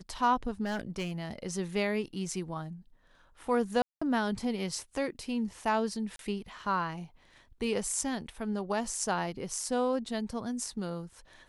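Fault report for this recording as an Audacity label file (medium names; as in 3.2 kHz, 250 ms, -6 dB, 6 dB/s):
0.640000	1.120000	clipped -29.5 dBFS
3.820000	4.010000	dropout 195 ms
6.160000	6.190000	dropout 32 ms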